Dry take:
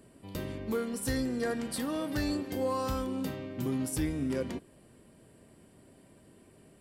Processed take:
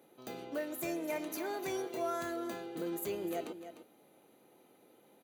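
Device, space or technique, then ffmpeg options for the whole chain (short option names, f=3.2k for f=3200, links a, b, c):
nightcore: -af "highpass=200,bandreject=f=4.1k:w=6.5,aecho=1:1:391:0.282,asetrate=57330,aresample=44100,volume=-4.5dB"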